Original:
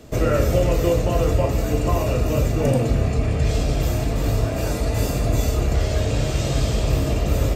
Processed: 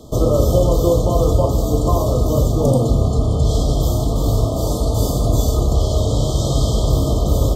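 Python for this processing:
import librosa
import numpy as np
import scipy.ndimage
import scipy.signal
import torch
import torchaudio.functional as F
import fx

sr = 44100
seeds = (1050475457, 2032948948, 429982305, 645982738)

y = fx.brickwall_bandstop(x, sr, low_hz=1300.0, high_hz=3000.0)
y = F.gain(torch.from_numpy(y), 4.0).numpy()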